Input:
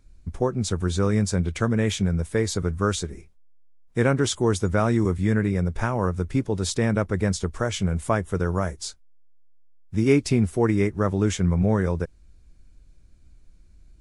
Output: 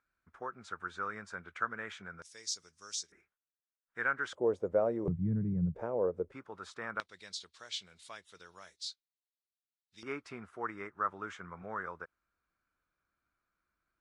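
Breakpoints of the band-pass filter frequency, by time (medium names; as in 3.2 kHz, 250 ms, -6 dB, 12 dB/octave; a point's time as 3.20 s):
band-pass filter, Q 4.1
1.4 kHz
from 2.22 s 5.5 kHz
from 3.12 s 1.5 kHz
from 4.33 s 540 Hz
from 5.08 s 150 Hz
from 5.75 s 490 Hz
from 6.32 s 1.3 kHz
from 7.00 s 4 kHz
from 10.03 s 1.3 kHz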